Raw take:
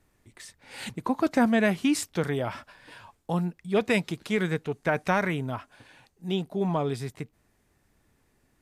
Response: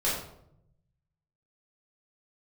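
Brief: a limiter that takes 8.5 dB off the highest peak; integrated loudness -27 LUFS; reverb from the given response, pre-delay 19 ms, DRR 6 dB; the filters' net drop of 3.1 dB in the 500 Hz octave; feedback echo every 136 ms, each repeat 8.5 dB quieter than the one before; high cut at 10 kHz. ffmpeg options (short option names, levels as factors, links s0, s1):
-filter_complex "[0:a]lowpass=10000,equalizer=f=500:t=o:g=-4,alimiter=limit=0.0944:level=0:latency=1,aecho=1:1:136|272|408|544:0.376|0.143|0.0543|0.0206,asplit=2[s0][s1];[1:a]atrim=start_sample=2205,adelay=19[s2];[s1][s2]afir=irnorm=-1:irlink=0,volume=0.158[s3];[s0][s3]amix=inputs=2:normalize=0,volume=1.5"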